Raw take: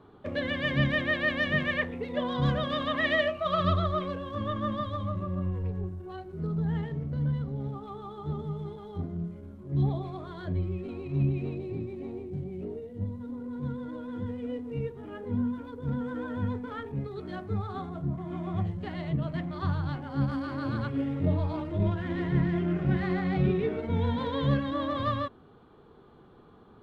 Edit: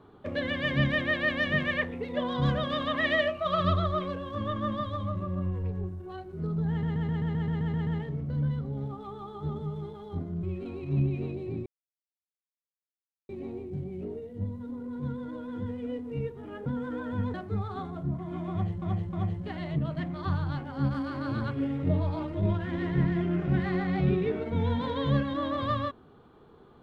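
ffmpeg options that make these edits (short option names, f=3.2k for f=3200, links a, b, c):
-filter_complex "[0:a]asplit=16[a][b][c][d][e][f][g][h][i][j][k][l][m][n][o][p];[a]atrim=end=6.832[q];[b]atrim=start=6.698:end=6.832[r];[c]atrim=start=6.698:end=6.832[s];[d]atrim=start=6.698:end=6.832[t];[e]atrim=start=6.698:end=6.832[u];[f]atrim=start=6.698:end=6.832[v];[g]atrim=start=6.698:end=6.832[w];[h]atrim=start=6.698:end=6.832[x];[i]atrim=start=6.698:end=6.832[y];[j]atrim=start=6.698:end=9.262[z];[k]atrim=start=10.658:end=11.89,asetpts=PTS-STARTPTS,afade=t=out:st=1.228:d=0.004:c=hsin,apad=pad_dur=1.63[aa];[l]atrim=start=11.89:end=15.262,asetpts=PTS-STARTPTS,afade=t=in:d=0.004:c=hsin[ab];[m]atrim=start=15.898:end=16.582[ac];[n]atrim=start=17.328:end=18.812[ad];[o]atrim=start=18.498:end=18.812[ae];[p]atrim=start=18.498[af];[q][r]acrossfade=d=0.004:c1=hsin:c2=hsin[ag];[ag][s]acrossfade=d=0.004:c1=hsin:c2=hsin[ah];[ah][t]acrossfade=d=0.004:c1=hsin:c2=hsin[ai];[ai][u]acrossfade=d=0.004:c1=hsin:c2=hsin[aj];[aj][v]acrossfade=d=0.004:c1=hsin:c2=hsin[ak];[ak][w]acrossfade=d=0.004:c1=hsin:c2=hsin[al];[al][x]acrossfade=d=0.004:c1=hsin:c2=hsin[am];[am][y]acrossfade=d=0.004:c1=hsin:c2=hsin[an];[an][z]acrossfade=d=0.004:c1=hsin:c2=hsin[ao];[aa][ab]concat=n=2:v=0:a=1[ap];[ao][ap]acrossfade=d=0.004:c1=hsin:c2=hsin[aq];[aq][ac]acrossfade=d=0.004:c1=hsin:c2=hsin[ar];[ar][ad]acrossfade=d=0.004:c1=hsin:c2=hsin[as];[as][ae]acrossfade=d=0.004:c1=hsin:c2=hsin[at];[at][af]acrossfade=d=0.004:c1=hsin:c2=hsin"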